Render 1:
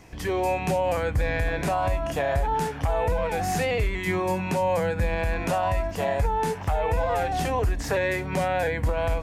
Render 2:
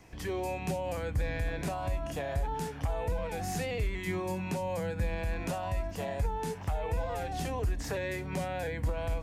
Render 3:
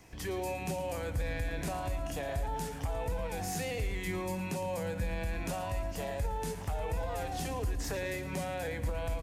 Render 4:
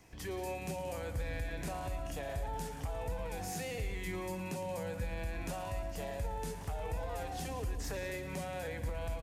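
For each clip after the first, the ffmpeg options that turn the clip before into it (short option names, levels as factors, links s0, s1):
-filter_complex "[0:a]acrossover=split=400|3000[s0][s1][s2];[s1]acompressor=threshold=0.00891:ratio=1.5[s3];[s0][s3][s2]amix=inputs=3:normalize=0,volume=0.501"
-filter_complex "[0:a]highshelf=f=4700:g=6,aecho=1:1:112|224|336|448|560|672:0.237|0.133|0.0744|0.0416|0.0233|0.0131,asplit=2[s0][s1];[s1]alimiter=level_in=1.33:limit=0.0631:level=0:latency=1,volume=0.75,volume=0.794[s2];[s0][s2]amix=inputs=2:normalize=0,volume=0.473"
-af "aecho=1:1:179:0.237,volume=0.631"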